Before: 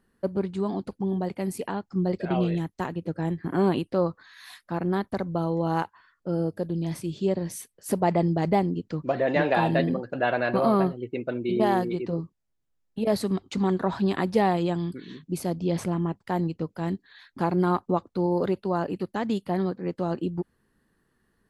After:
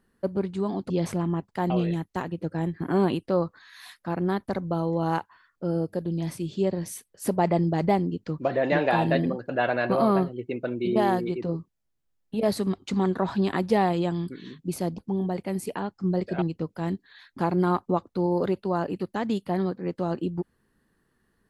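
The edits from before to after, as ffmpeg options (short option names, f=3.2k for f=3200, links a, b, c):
-filter_complex "[0:a]asplit=5[a][b][c][d][e];[a]atrim=end=0.902[f];[b]atrim=start=15.618:end=16.422[g];[c]atrim=start=2.338:end=15.622[h];[d]atrim=start=0.898:end=2.342[i];[e]atrim=start=16.418[j];[f][g]acrossfade=d=0.004:c1=hsin:c2=hsin[k];[k][h]acrossfade=d=0.004:c1=hsin:c2=hsin[l];[l][i]acrossfade=d=0.004:c1=hsin:c2=hsin[m];[m][j]acrossfade=d=0.004:c1=hsin:c2=hsin"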